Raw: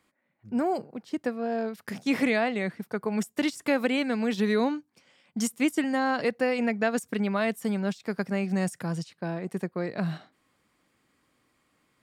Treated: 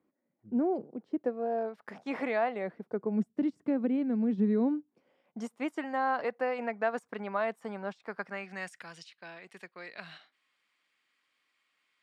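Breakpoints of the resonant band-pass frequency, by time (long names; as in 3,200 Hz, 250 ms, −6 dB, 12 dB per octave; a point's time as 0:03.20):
resonant band-pass, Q 1.2
0:00.91 320 Hz
0:01.87 840 Hz
0:02.49 840 Hz
0:03.26 220 Hz
0:04.49 220 Hz
0:05.74 920 Hz
0:07.98 920 Hz
0:08.93 2,800 Hz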